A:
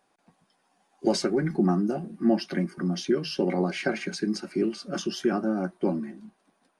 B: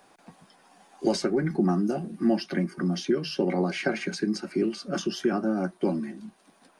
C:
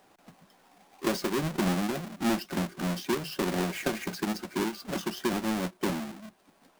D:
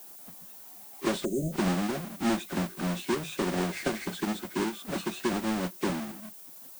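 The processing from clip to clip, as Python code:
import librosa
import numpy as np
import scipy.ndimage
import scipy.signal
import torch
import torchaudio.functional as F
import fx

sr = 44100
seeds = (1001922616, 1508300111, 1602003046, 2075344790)

y1 = fx.band_squash(x, sr, depth_pct=40)
y2 = fx.halfwave_hold(y1, sr)
y2 = F.gain(torch.from_numpy(y2), -7.5).numpy()
y3 = fx.freq_compress(y2, sr, knee_hz=1900.0, ratio=1.5)
y3 = fx.spec_erase(y3, sr, start_s=1.25, length_s=0.28, low_hz=710.0, high_hz=6100.0)
y3 = fx.dmg_noise_colour(y3, sr, seeds[0], colour='violet', level_db=-48.0)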